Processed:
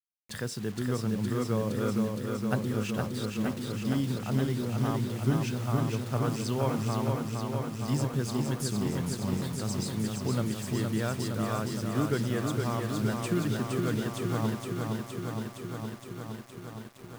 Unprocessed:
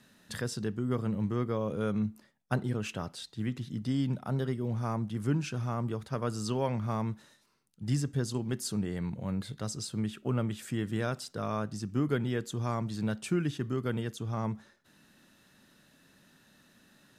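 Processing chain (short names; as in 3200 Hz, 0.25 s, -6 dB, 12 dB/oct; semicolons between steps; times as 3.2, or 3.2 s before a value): bit-crush 8-bit; lo-fi delay 0.465 s, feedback 80%, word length 9-bit, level -4 dB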